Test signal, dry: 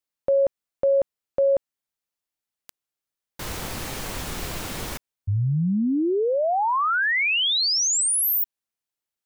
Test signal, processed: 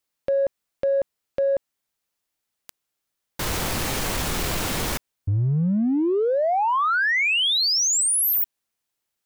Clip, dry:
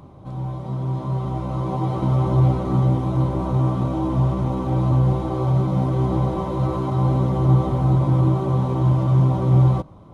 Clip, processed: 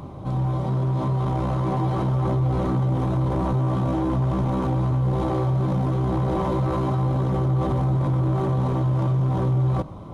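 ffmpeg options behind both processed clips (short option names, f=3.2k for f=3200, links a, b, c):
-filter_complex "[0:a]acompressor=threshold=-26dB:ratio=5:attack=0.27:release=20:knee=1:detection=peak,asplit=2[a][b];[b]asoftclip=type=tanh:threshold=-26dB,volume=-4dB[c];[a][c]amix=inputs=2:normalize=0,volume=3dB"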